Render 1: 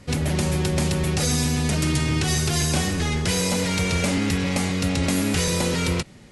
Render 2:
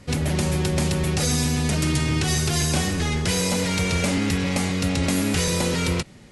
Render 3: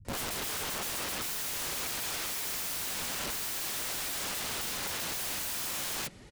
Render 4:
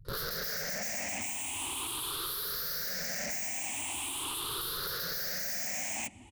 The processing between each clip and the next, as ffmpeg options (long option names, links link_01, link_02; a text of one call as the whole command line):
ffmpeg -i in.wav -af anull out.wav
ffmpeg -i in.wav -filter_complex "[0:a]flanger=delay=2.1:depth=5.2:regen=-20:speed=1.6:shape=sinusoidal,acrossover=split=180[link_01][link_02];[link_02]adelay=50[link_03];[link_01][link_03]amix=inputs=2:normalize=0,aeval=exprs='(mod(33.5*val(0)+1,2)-1)/33.5':channel_layout=same" out.wav
ffmpeg -i in.wav -af "afftfilt=real='re*pow(10,19/40*sin(2*PI*(0.61*log(max(b,1)*sr/1024/100)/log(2)-(0.42)*(pts-256)/sr)))':imag='im*pow(10,19/40*sin(2*PI*(0.61*log(max(b,1)*sr/1024/100)/log(2)-(0.42)*(pts-256)/sr)))':win_size=1024:overlap=0.75,volume=-5dB" out.wav